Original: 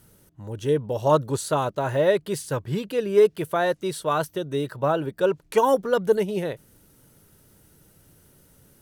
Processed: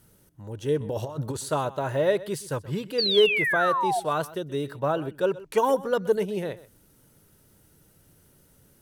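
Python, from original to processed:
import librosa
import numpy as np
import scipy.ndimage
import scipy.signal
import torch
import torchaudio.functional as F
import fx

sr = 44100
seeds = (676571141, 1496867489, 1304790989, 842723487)

y = fx.over_compress(x, sr, threshold_db=-28.0, ratio=-1.0, at=(0.8, 1.37))
y = fx.spec_paint(y, sr, seeds[0], shape='fall', start_s=2.98, length_s=1.02, low_hz=670.0, high_hz=4800.0, level_db=-22.0)
y = y + 10.0 ** (-18.0 / 20.0) * np.pad(y, (int(127 * sr / 1000.0), 0))[:len(y)]
y = y * 10.0 ** (-3.0 / 20.0)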